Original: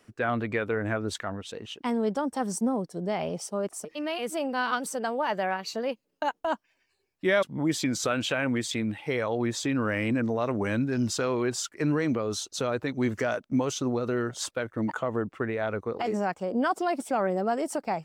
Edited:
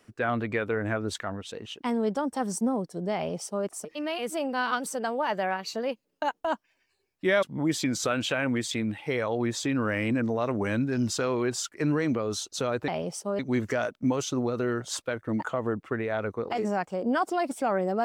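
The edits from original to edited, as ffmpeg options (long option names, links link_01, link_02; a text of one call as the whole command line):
ffmpeg -i in.wav -filter_complex "[0:a]asplit=3[link_01][link_02][link_03];[link_01]atrim=end=12.882[link_04];[link_02]atrim=start=3.148:end=3.662[link_05];[link_03]atrim=start=12.878[link_06];[link_04][link_05]acrossfade=duration=0.004:curve1=hsin:curve2=hsin[link_07];[link_07][link_06]acrossfade=duration=0.004:curve1=hsin:curve2=hsin" out.wav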